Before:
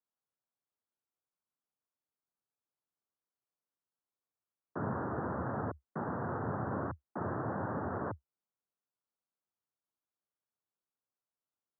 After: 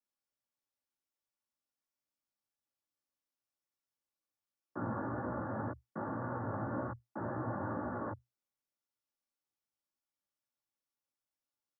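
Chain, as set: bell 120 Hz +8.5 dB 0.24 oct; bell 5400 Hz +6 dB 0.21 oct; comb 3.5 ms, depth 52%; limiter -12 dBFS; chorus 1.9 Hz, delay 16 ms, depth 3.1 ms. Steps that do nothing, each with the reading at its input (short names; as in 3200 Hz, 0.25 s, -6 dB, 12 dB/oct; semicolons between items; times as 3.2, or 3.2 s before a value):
bell 5400 Hz: input band ends at 1700 Hz; limiter -12 dBFS: input peak -23.0 dBFS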